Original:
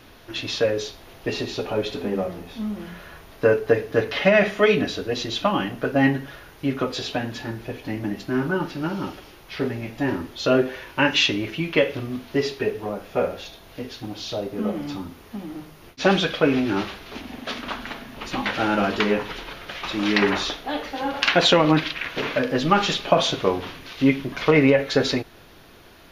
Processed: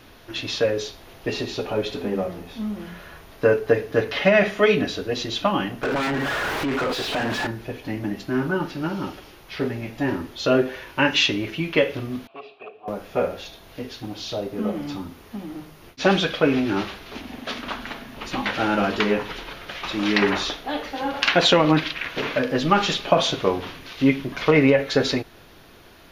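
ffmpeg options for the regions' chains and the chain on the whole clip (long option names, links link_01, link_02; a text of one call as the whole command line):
ffmpeg -i in.wav -filter_complex "[0:a]asettb=1/sr,asplit=3[link_01][link_02][link_03];[link_01]atrim=end=5.834[link_04];[link_02]atrim=start=5.83:end=7.47,asetpts=PTS-STARTPTS,afade=type=in:duration=0.004:curve=qsin,afade=type=out:start_time=1.636:duration=0.004:curve=qsin,aeval=exprs='0.447*sin(PI/2*3.16*val(0)/0.447)':channel_layout=same,acompressor=threshold=-26dB:ratio=12:attack=3.2:release=140:knee=1:detection=peak,asplit=2[link_05][link_06];[link_06]highpass=frequency=720:poles=1,volume=29dB,asoftclip=type=tanh:threshold=-16.5dB[link_07];[link_05][link_07]amix=inputs=2:normalize=0,lowpass=frequency=1800:poles=1,volume=-6dB[link_08];[link_03]atrim=start=7.466[link_09];[link_04][link_08]acrossfade=duration=0.004:curve1=hsin:curve2=qsin[link_10];[link_10][link_09]acrossfade=duration=0.004:curve1=qsin:curve2=hsin,asettb=1/sr,asplit=3[link_11][link_12][link_13];[link_11]atrim=end=12.274[link_14];[link_12]atrim=start=12.27:end=12.88,asetpts=PTS-STARTPTS,afade=type=in:duration=0.004:curve=qsin,afade=type=out:start_time=0.606:duration=0.004:curve=qsin,aeval=exprs='0.141*(abs(mod(val(0)/0.141+3,4)-2)-1)':channel_layout=same,asplit=3[link_15][link_16][link_17];[link_15]bandpass=frequency=730:width_type=q:width=8,volume=0dB[link_18];[link_16]bandpass=frequency=1090:width_type=q:width=8,volume=-6dB[link_19];[link_17]bandpass=frequency=2440:width_type=q:width=8,volume=-9dB[link_20];[link_18][link_19][link_20]amix=inputs=3:normalize=0,highshelf=frequency=5000:width_type=q:width=1.5:gain=-12[link_21];[link_13]atrim=start=12.876[link_22];[link_14][link_21]acrossfade=duration=0.004:curve1=hsin:curve2=qsin[link_23];[link_23][link_22]acrossfade=duration=0.004:curve1=qsin:curve2=hsin" out.wav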